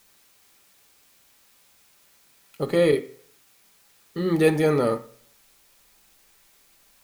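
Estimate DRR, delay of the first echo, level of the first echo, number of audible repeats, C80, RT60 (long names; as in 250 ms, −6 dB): 5.0 dB, no echo audible, no echo audible, no echo audible, 19.5 dB, 0.50 s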